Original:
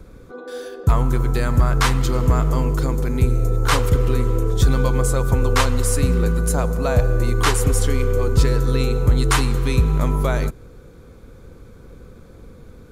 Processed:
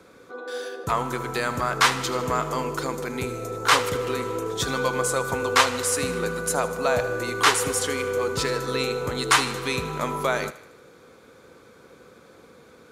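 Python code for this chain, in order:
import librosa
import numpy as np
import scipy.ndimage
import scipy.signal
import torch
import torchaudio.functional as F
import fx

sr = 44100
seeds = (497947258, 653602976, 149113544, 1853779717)

y = fx.weighting(x, sr, curve='A')
y = fx.echo_thinned(y, sr, ms=77, feedback_pct=57, hz=420.0, wet_db=-15.5)
y = y * 10.0 ** (1.5 / 20.0)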